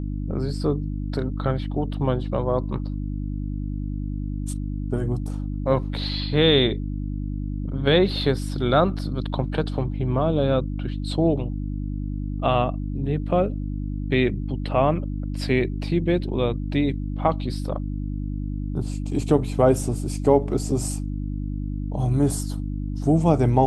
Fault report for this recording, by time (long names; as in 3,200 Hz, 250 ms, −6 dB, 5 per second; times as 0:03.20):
mains hum 50 Hz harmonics 6 −28 dBFS